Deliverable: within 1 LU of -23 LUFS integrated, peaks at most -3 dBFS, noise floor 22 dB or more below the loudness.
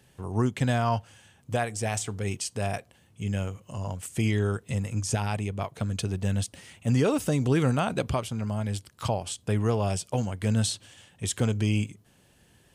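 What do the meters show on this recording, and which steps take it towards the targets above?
loudness -29.0 LUFS; peak -14.5 dBFS; loudness target -23.0 LUFS
-> gain +6 dB

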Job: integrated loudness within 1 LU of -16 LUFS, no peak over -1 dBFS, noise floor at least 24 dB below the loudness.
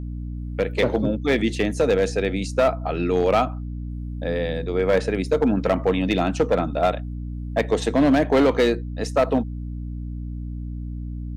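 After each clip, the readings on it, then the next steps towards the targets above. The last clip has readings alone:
clipped 1.3%; flat tops at -12.0 dBFS; hum 60 Hz; harmonics up to 300 Hz; hum level -28 dBFS; loudness -22.0 LUFS; peak -12.0 dBFS; loudness target -16.0 LUFS
-> clip repair -12 dBFS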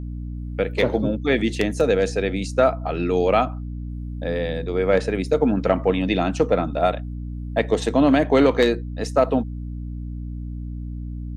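clipped 0.0%; hum 60 Hz; harmonics up to 300 Hz; hum level -28 dBFS
-> notches 60/120/180/240/300 Hz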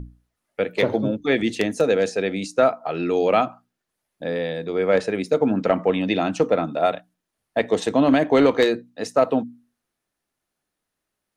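hum none; loudness -21.5 LUFS; peak -3.5 dBFS; loudness target -16.0 LUFS
-> gain +5.5 dB; limiter -1 dBFS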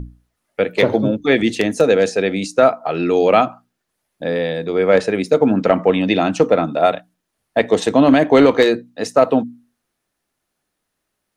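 loudness -16.0 LUFS; peak -1.0 dBFS; noise floor -76 dBFS

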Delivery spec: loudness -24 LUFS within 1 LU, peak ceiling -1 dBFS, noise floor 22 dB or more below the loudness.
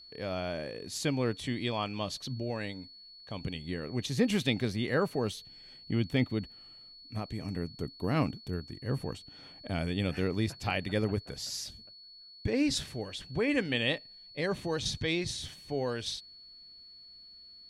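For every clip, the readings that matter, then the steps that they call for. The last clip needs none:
steady tone 4400 Hz; tone level -50 dBFS; loudness -33.5 LUFS; peak -13.0 dBFS; loudness target -24.0 LUFS
-> notch 4400 Hz, Q 30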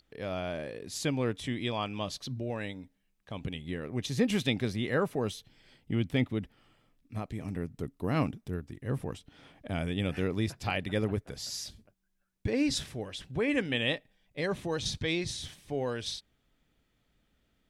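steady tone none; loudness -33.5 LUFS; peak -13.0 dBFS; loudness target -24.0 LUFS
-> gain +9.5 dB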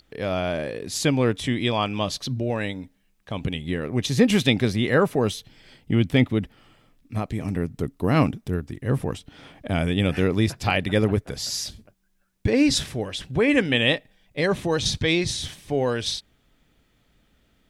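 loudness -24.0 LUFS; peak -3.5 dBFS; noise floor -65 dBFS

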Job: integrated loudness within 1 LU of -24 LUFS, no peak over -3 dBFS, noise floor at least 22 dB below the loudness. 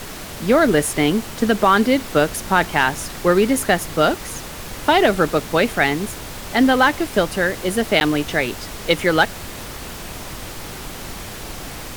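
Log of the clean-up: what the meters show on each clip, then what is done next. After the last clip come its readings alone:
dropouts 1; longest dropout 9.9 ms; noise floor -33 dBFS; noise floor target -41 dBFS; loudness -18.5 LUFS; peak -2.0 dBFS; loudness target -24.0 LUFS
-> interpolate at 8, 9.9 ms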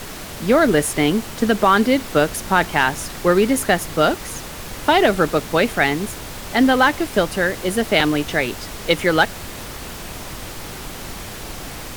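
dropouts 0; noise floor -33 dBFS; noise floor target -41 dBFS
-> noise print and reduce 8 dB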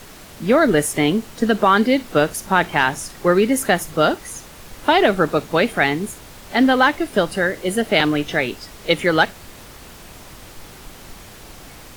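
noise floor -41 dBFS; loudness -18.5 LUFS; peak -2.0 dBFS; loudness target -24.0 LUFS
-> gain -5.5 dB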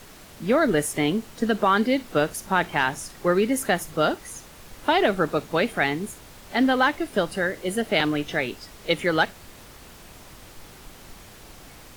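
loudness -24.0 LUFS; peak -7.5 dBFS; noise floor -46 dBFS

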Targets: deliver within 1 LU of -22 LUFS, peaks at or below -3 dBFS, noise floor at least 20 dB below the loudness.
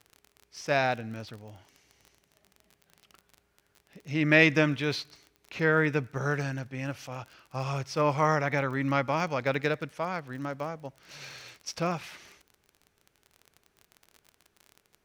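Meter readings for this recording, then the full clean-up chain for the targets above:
ticks 32/s; loudness -28.5 LUFS; peak -6.0 dBFS; loudness target -22.0 LUFS
-> de-click; gain +6.5 dB; limiter -3 dBFS

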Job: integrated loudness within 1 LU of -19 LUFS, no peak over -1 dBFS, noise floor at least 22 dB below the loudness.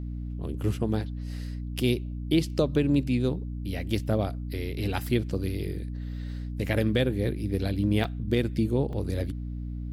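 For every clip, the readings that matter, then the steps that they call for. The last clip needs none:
dropouts 2; longest dropout 2.8 ms; hum 60 Hz; harmonics up to 300 Hz; hum level -31 dBFS; loudness -29.0 LUFS; peak -11.5 dBFS; loudness target -19.0 LUFS
-> interpolate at 8.04/8.93, 2.8 ms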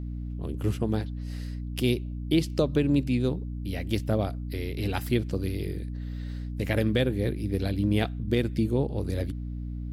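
dropouts 0; hum 60 Hz; harmonics up to 300 Hz; hum level -31 dBFS
-> notches 60/120/180/240/300 Hz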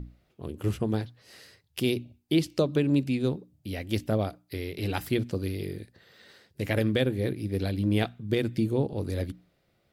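hum none; loudness -29.5 LUFS; peak -12.5 dBFS; loudness target -19.0 LUFS
-> gain +10.5 dB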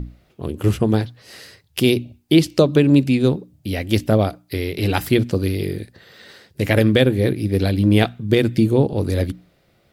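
loudness -19.0 LUFS; peak -2.0 dBFS; noise floor -60 dBFS

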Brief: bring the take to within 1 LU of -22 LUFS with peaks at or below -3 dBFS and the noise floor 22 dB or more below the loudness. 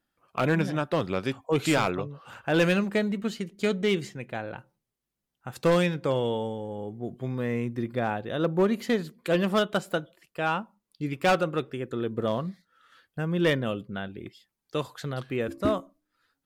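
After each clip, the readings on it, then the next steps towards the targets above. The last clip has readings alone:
clipped 0.7%; flat tops at -16.5 dBFS; loudness -28.0 LUFS; peak -16.5 dBFS; loudness target -22.0 LUFS
-> clip repair -16.5 dBFS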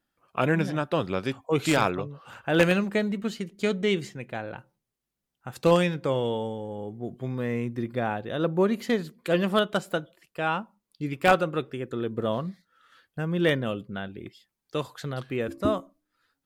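clipped 0.0%; loudness -27.5 LUFS; peak -7.5 dBFS; loudness target -22.0 LUFS
-> gain +5.5 dB; limiter -3 dBFS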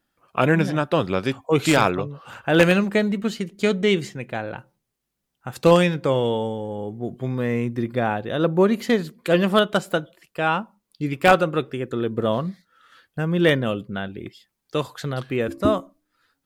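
loudness -22.0 LUFS; peak -3.0 dBFS; noise floor -79 dBFS

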